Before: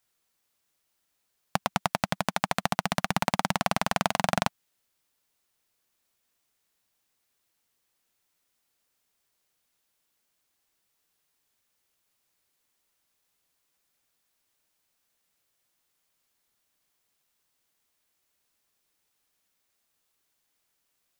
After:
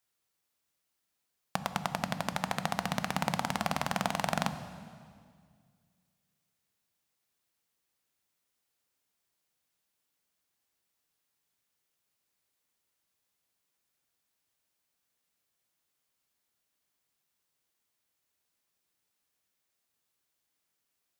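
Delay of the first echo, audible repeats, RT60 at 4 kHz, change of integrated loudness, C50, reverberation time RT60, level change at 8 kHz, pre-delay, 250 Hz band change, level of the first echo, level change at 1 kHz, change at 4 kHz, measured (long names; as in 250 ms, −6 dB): no echo audible, no echo audible, 1.9 s, −5.0 dB, 11.0 dB, 2.0 s, −5.0 dB, 11 ms, −3.5 dB, no echo audible, −5.0 dB, −5.0 dB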